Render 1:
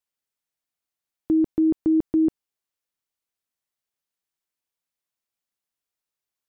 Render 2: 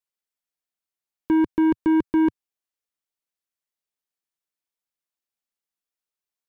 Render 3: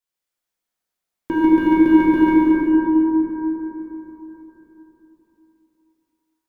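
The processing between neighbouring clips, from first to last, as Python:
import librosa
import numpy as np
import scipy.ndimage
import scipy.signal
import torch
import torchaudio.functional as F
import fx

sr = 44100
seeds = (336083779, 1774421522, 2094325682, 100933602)

y1 = fx.leveller(x, sr, passes=2)
y1 = fx.peak_eq(y1, sr, hz=110.0, db=-12.0, octaves=0.5)
y2 = y1 + 10.0 ** (-6.0 / 20.0) * np.pad(y1, (int(222 * sr / 1000.0), 0))[:len(y1)]
y2 = fx.rev_plate(y2, sr, seeds[0], rt60_s=4.1, hf_ratio=0.4, predelay_ms=0, drr_db=-7.5)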